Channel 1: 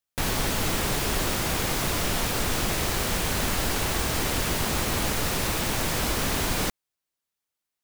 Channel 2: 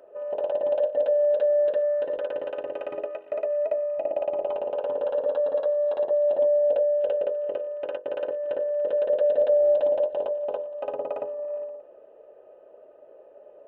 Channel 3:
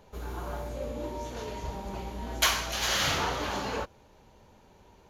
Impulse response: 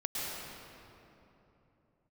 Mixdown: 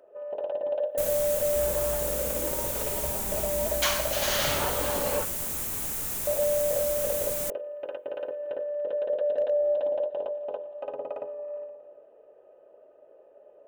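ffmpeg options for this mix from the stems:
-filter_complex "[0:a]aexciter=amount=6.1:drive=1.5:freq=6500,adelay=800,volume=-14dB[link_01];[1:a]volume=-5dB,asplit=3[link_02][link_03][link_04];[link_02]atrim=end=5.22,asetpts=PTS-STARTPTS,afade=type=out:start_time=5.216:duration=0.004:curve=hsin[link_05];[link_03]atrim=start=5.22:end=6.27,asetpts=PTS-STARTPTS,volume=0[link_06];[link_04]atrim=start=6.27,asetpts=PTS-STARTPTS,afade=type=in:duration=0.004:curve=hsin[link_07];[link_05][link_06][link_07]concat=n=3:v=0:a=1,asplit=2[link_08][link_09];[link_09]volume=-22dB[link_10];[2:a]adelay=1400,volume=-1dB[link_11];[3:a]atrim=start_sample=2205[link_12];[link_10][link_12]afir=irnorm=-1:irlink=0[link_13];[link_01][link_08][link_11][link_13]amix=inputs=4:normalize=0,asoftclip=type=hard:threshold=-19dB"

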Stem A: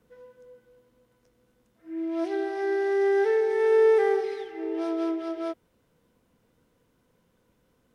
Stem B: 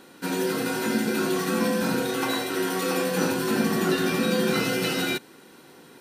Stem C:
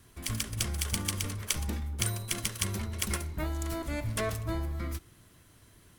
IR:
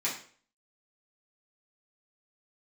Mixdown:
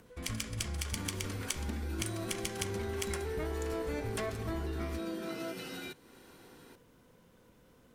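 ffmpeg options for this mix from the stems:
-filter_complex "[0:a]acompressor=mode=upward:threshold=-40dB:ratio=2.5,alimiter=limit=-21.5dB:level=0:latency=1,volume=-8.5dB[link_01];[1:a]acompressor=threshold=-38dB:ratio=2.5,adelay=750,volume=-7dB[link_02];[2:a]agate=range=-33dB:threshold=-52dB:ratio=3:detection=peak,highshelf=frequency=11000:gain=11,adynamicsmooth=sensitivity=2:basefreq=5500,volume=0dB,asplit=2[link_03][link_04];[link_04]volume=-15.5dB[link_05];[3:a]atrim=start_sample=2205[link_06];[link_05][link_06]afir=irnorm=-1:irlink=0[link_07];[link_01][link_02][link_03][link_07]amix=inputs=4:normalize=0,acompressor=threshold=-34dB:ratio=3"

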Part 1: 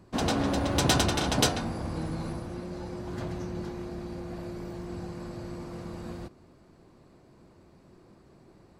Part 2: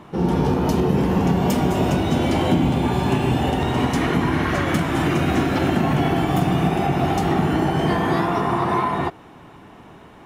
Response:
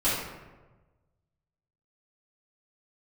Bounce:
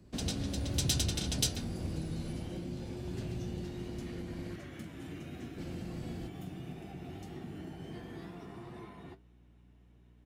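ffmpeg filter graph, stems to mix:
-filter_complex "[0:a]volume=-2.5dB,asplit=3[link_01][link_02][link_03];[link_01]atrim=end=4.56,asetpts=PTS-STARTPTS,afade=type=out:start_time=4.556:duration=0.004:curve=hsin[link_04];[link_02]atrim=start=4.56:end=5.58,asetpts=PTS-STARTPTS,volume=0[link_05];[link_03]atrim=start=5.58,asetpts=PTS-STARTPTS,afade=type=in:duration=0.004:curve=hsin[link_06];[link_04][link_05][link_06]concat=n=3:v=0:a=1[link_07];[1:a]flanger=delay=8.1:depth=3.2:regen=58:speed=1.5:shape=sinusoidal,aeval=exprs='val(0)+0.00891*(sin(2*PI*60*n/s)+sin(2*PI*2*60*n/s)/2+sin(2*PI*3*60*n/s)/3+sin(2*PI*4*60*n/s)/4+sin(2*PI*5*60*n/s)/5)':channel_layout=same,adelay=50,volume=-18.5dB[link_08];[link_07][link_08]amix=inputs=2:normalize=0,equalizer=frequency=1000:width=0.98:gain=-12,acrossover=split=150|3000[link_09][link_10][link_11];[link_10]acompressor=threshold=-39dB:ratio=6[link_12];[link_09][link_12][link_11]amix=inputs=3:normalize=0"

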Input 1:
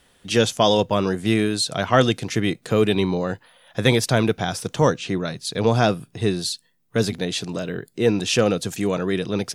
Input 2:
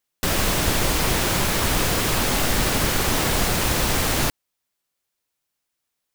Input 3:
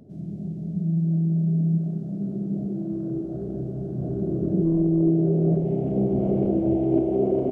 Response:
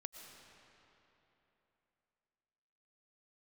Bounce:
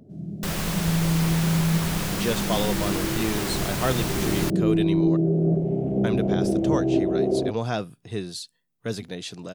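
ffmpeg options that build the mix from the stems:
-filter_complex "[0:a]adelay=1900,volume=-9dB,asplit=3[link_01][link_02][link_03];[link_01]atrim=end=5.17,asetpts=PTS-STARTPTS,afade=type=out:start_time=5.166:duration=0.004:curve=hsin[link_04];[link_02]atrim=start=5.17:end=6.04,asetpts=PTS-STARTPTS,volume=0[link_05];[link_03]atrim=start=6.04,asetpts=PTS-STARTPTS,afade=type=in:duration=0.004:curve=hsin[link_06];[link_04][link_05][link_06]concat=n=3:v=0:a=1[link_07];[1:a]adelay=200,volume=-8dB[link_08];[2:a]volume=-0.5dB[link_09];[link_07][link_08][link_09]amix=inputs=3:normalize=0"

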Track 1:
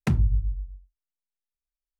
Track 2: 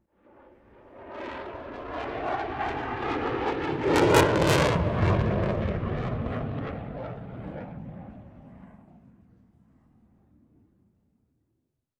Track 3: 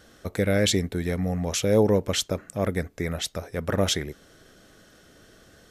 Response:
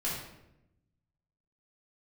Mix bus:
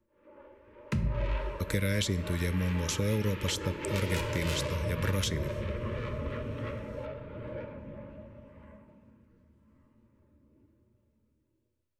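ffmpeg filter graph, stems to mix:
-filter_complex "[0:a]highshelf=frequency=8800:gain=-8.5,adelay=850,volume=-5dB,asplit=2[link_01][link_02];[link_02]volume=-11dB[link_03];[1:a]equalizer=frequency=160:width_type=o:width=0.67:gain=-9,equalizer=frequency=630:width_type=o:width=0.67:gain=9,equalizer=frequency=2500:width_type=o:width=0.67:gain=4,acompressor=threshold=-26dB:ratio=1.5,flanger=delay=8.2:depth=6.1:regen=67:speed=1.2:shape=sinusoidal,volume=-0.5dB,asplit=2[link_04][link_05];[link_05]volume=-10dB[link_06];[2:a]agate=range=-33dB:threshold=-44dB:ratio=3:detection=peak,adelay=1350,volume=2dB,asplit=2[link_07][link_08];[link_08]volume=-22.5dB[link_09];[3:a]atrim=start_sample=2205[link_10];[link_03][link_06][link_09]amix=inputs=3:normalize=0[link_11];[link_11][link_10]afir=irnorm=-1:irlink=0[link_12];[link_01][link_04][link_07][link_12]amix=inputs=4:normalize=0,acrossover=split=170|2100[link_13][link_14][link_15];[link_13]acompressor=threshold=-29dB:ratio=4[link_16];[link_14]acompressor=threshold=-35dB:ratio=4[link_17];[link_15]acompressor=threshold=-34dB:ratio=4[link_18];[link_16][link_17][link_18]amix=inputs=3:normalize=0,asuperstop=centerf=730:order=20:qfactor=3.4"

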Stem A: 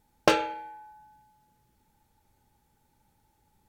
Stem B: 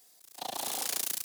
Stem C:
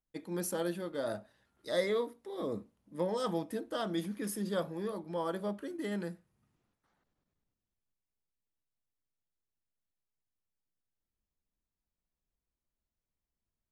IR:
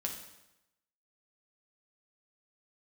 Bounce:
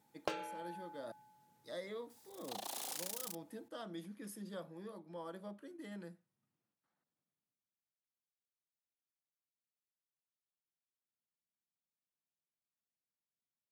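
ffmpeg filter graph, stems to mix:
-filter_complex "[0:a]volume=-2.5dB[link_01];[1:a]highpass=200,adelay=2100,volume=-5dB[link_02];[2:a]bandreject=frequency=410:width=12,volume=-11dB,asplit=3[link_03][link_04][link_05];[link_03]atrim=end=1.12,asetpts=PTS-STARTPTS,afade=type=out:start_time=1.116:duration=0.004:curve=hsin[link_06];[link_04]atrim=start=1.12:end=1.63,asetpts=PTS-STARTPTS,volume=0[link_07];[link_05]atrim=start=1.63,asetpts=PTS-STARTPTS,afade=type=in:duration=0.004:curve=hsin[link_08];[link_06][link_07][link_08]concat=n=3:v=0:a=1[link_09];[link_01][link_02][link_09]amix=inputs=3:normalize=0,highpass=frequency=120:width=0.5412,highpass=frequency=120:width=1.3066,acompressor=threshold=-41dB:ratio=3"

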